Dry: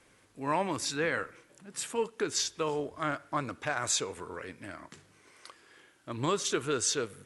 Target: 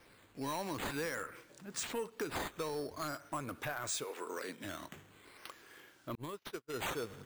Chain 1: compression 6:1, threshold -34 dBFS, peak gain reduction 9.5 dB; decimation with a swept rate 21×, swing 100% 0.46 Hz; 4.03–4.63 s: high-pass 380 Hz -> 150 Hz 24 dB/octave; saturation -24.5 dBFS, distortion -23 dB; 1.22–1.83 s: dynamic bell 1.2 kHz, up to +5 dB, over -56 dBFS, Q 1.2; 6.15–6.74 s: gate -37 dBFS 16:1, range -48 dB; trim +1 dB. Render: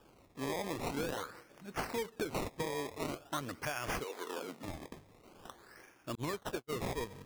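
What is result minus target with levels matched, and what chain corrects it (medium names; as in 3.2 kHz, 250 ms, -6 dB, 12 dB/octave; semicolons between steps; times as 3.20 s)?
decimation with a swept rate: distortion +8 dB; saturation: distortion -8 dB
compression 6:1, threshold -34 dBFS, peak gain reduction 9.5 dB; decimation with a swept rate 6×, swing 100% 0.46 Hz; 4.03–4.63 s: high-pass 380 Hz -> 150 Hz 24 dB/octave; saturation -31 dBFS, distortion -15 dB; 1.22–1.83 s: dynamic bell 1.2 kHz, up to +5 dB, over -56 dBFS, Q 1.2; 6.15–6.74 s: gate -37 dBFS 16:1, range -48 dB; trim +1 dB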